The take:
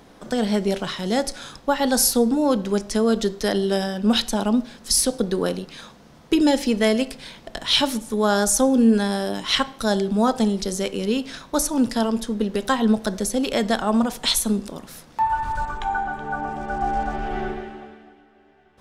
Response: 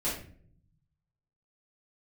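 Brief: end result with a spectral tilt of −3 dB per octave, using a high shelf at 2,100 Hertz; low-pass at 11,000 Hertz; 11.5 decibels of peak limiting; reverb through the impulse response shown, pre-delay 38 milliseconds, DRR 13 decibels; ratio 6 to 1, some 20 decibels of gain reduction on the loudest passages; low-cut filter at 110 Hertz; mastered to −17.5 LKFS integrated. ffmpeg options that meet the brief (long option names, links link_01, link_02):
-filter_complex "[0:a]highpass=110,lowpass=11000,highshelf=frequency=2100:gain=9,acompressor=threshold=-31dB:ratio=6,alimiter=limit=-23dB:level=0:latency=1,asplit=2[link_01][link_02];[1:a]atrim=start_sample=2205,adelay=38[link_03];[link_02][link_03]afir=irnorm=-1:irlink=0,volume=-19.5dB[link_04];[link_01][link_04]amix=inputs=2:normalize=0,volume=16.5dB"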